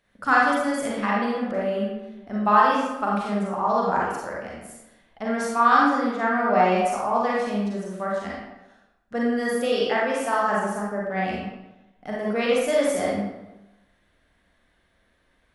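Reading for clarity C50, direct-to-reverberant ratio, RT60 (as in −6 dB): −1.0 dB, −5.0 dB, 1.0 s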